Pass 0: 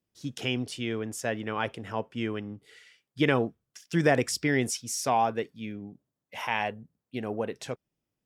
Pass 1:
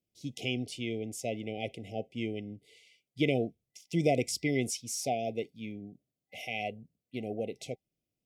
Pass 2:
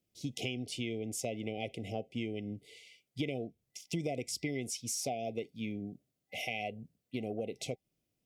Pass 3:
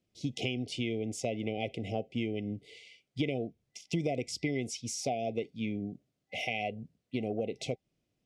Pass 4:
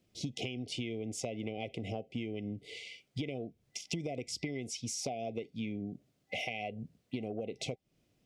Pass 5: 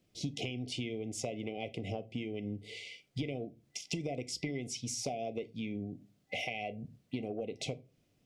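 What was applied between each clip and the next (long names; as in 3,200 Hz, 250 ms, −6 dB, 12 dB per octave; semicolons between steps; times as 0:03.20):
brick-wall band-stop 780–2,000 Hz; level −3.5 dB
downward compressor 6 to 1, threshold −38 dBFS, peak gain reduction 15.5 dB; level +4.5 dB
high-frequency loss of the air 72 metres; level +4 dB
downward compressor 5 to 1, threshold −43 dBFS, peak gain reduction 15 dB; level +7 dB
rectangular room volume 130 cubic metres, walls furnished, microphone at 0.33 metres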